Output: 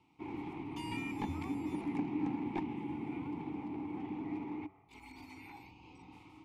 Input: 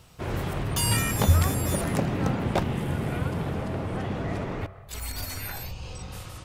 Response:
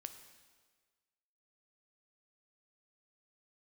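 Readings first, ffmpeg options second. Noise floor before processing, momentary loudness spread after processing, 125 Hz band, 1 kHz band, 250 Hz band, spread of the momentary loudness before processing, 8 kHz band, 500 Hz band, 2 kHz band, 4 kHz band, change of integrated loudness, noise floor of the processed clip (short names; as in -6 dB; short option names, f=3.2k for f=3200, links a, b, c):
-45 dBFS, 18 LU, -21.5 dB, -11.5 dB, -6.0 dB, 14 LU, under -30 dB, -15.5 dB, -14.5 dB, under -15 dB, -12.0 dB, -64 dBFS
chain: -filter_complex "[0:a]asplit=3[a][b][c];[a]bandpass=f=300:t=q:w=8,volume=0dB[d];[b]bandpass=f=870:t=q:w=8,volume=-6dB[e];[c]bandpass=f=2.24k:t=q:w=8,volume=-9dB[f];[d][e][f]amix=inputs=3:normalize=0,acrossover=split=730|1300[g][h][i];[h]aeval=exprs='clip(val(0),-1,0.00168)':c=same[j];[g][j][i]amix=inputs=3:normalize=0,volume=1.5dB"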